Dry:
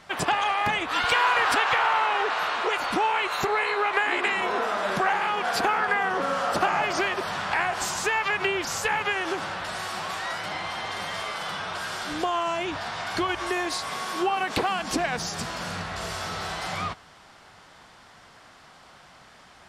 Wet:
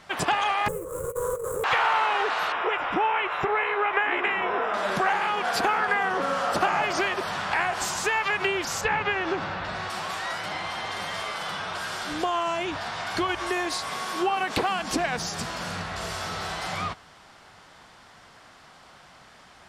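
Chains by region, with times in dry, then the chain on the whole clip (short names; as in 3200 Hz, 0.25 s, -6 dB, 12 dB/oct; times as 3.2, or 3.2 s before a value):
0.68–1.64 median filter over 25 samples + EQ curve 170 Hz 0 dB, 240 Hz -24 dB, 510 Hz +13 dB, 730 Hz -28 dB, 1100 Hz -7 dB, 2500 Hz -24 dB, 4500 Hz -30 dB, 7900 Hz +8 dB + negative-ratio compressor -28 dBFS, ratio -0.5
2.52–4.74 polynomial smoothing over 25 samples + notch 230 Hz, Q 5.9
8.81–9.9 LPF 4100 Hz + low shelf 260 Hz +7 dB + notch 3100 Hz, Q 20
whole clip: dry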